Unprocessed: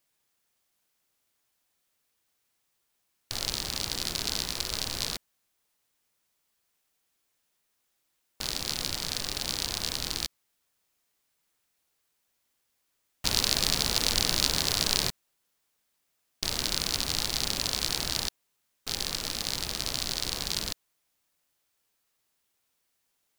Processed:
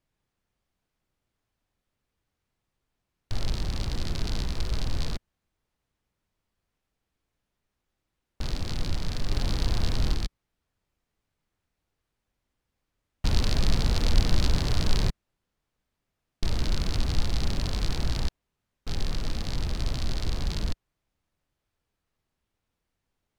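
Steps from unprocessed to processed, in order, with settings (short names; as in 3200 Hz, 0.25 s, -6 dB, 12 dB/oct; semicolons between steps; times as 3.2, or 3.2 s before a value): 9.31–10.14 sample leveller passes 1; RIAA curve playback; gain -1.5 dB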